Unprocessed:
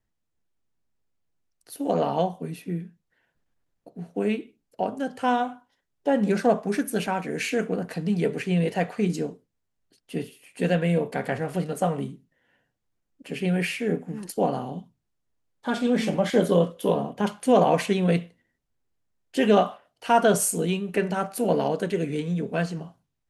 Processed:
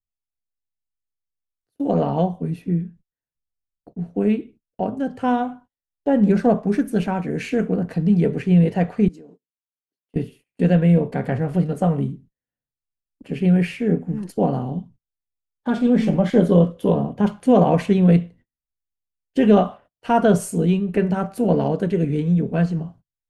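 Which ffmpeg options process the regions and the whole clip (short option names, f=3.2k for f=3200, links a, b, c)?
-filter_complex "[0:a]asettb=1/sr,asplit=3[a][b][c];[a]atrim=end=9.084[d];[b]atrim=start=9.08:end=10.16,asetpts=PTS-STARTPTS,afade=t=in:d=0.004:c=qsin,afade=t=out:st=1.076:d=0.004:c=qsin,highpass=270,acompressor=threshold=-43dB:ratio=16:attack=3.2:release=140:knee=1:detection=peak[e];[c]atrim=start=10.156[f];[d][e]acrossfade=d=0.004:c1=hsin:c2=qsin[g];[g][f]acrossfade=d=0.004:c1=qsin:c2=hsin,aemphasis=mode=reproduction:type=riaa,agate=range=-30dB:threshold=-44dB:ratio=16:detection=peak,highshelf=f=7.9k:g=10.5"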